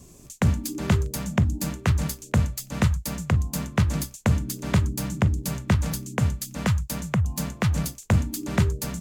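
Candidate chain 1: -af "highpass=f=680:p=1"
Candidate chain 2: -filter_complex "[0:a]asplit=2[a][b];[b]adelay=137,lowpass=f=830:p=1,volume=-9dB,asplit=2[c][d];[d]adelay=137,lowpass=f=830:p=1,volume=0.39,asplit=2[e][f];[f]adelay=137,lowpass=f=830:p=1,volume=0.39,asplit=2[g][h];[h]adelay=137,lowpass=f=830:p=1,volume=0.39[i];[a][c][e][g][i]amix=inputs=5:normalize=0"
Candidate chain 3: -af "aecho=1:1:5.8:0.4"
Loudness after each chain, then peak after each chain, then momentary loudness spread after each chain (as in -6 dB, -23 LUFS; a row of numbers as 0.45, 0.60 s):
-33.5, -25.0, -25.5 LUFS; -12.5, -9.0, -8.0 dBFS; 3, 3, 4 LU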